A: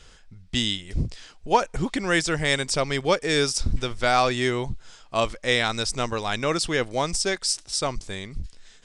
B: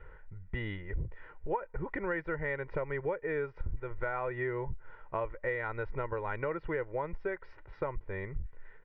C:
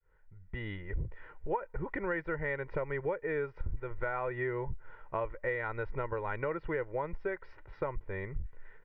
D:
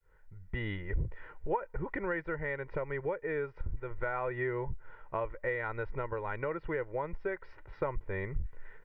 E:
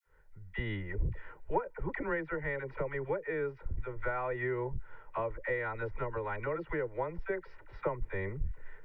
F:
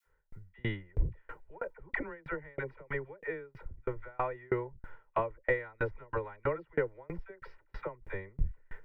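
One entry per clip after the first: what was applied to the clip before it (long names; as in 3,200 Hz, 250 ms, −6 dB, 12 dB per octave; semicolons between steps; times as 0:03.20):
elliptic low-pass filter 2,000 Hz, stop band 80 dB; comb filter 2.1 ms, depth 72%; downward compressor 6 to 1, threshold −30 dBFS, peak gain reduction 19 dB; level −1.5 dB
fade in at the beginning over 0.84 s
speech leveller within 4 dB 2 s
all-pass dispersion lows, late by 53 ms, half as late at 680 Hz
tremolo with a ramp in dB decaying 3.1 Hz, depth 35 dB; level +8 dB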